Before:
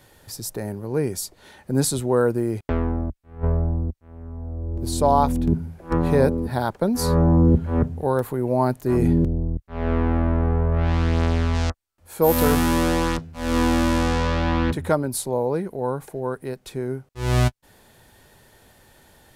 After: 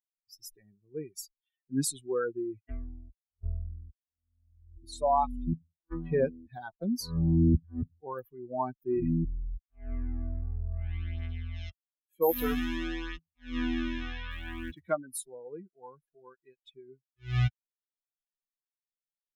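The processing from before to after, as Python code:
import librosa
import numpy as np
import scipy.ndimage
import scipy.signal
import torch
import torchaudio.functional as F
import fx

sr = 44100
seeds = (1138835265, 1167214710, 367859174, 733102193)

y = fx.bin_expand(x, sr, power=3.0)
y = fx.quant_float(y, sr, bits=4, at=(14.3, 14.88), fade=0.02)
y = F.gain(torch.from_numpy(y), -4.0).numpy()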